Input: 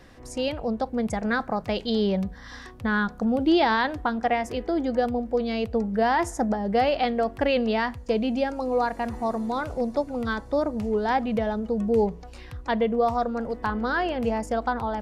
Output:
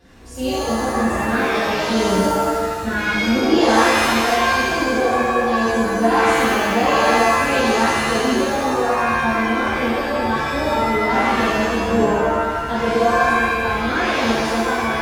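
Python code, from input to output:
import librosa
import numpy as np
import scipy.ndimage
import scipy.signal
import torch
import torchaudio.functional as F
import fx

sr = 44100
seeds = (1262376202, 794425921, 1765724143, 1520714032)

y = fx.spec_quant(x, sr, step_db=15)
y = fx.rev_shimmer(y, sr, seeds[0], rt60_s=1.4, semitones=7, shimmer_db=-2, drr_db=-10.5)
y = F.gain(torch.from_numpy(y), -6.0).numpy()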